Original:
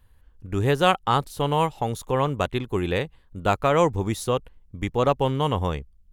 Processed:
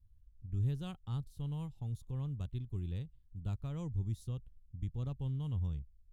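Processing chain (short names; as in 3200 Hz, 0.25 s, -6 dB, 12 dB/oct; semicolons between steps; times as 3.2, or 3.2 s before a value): EQ curve 120 Hz 0 dB, 550 Hz -27 dB, 2100 Hz -28 dB, 3500 Hz -18 dB; gain -6.5 dB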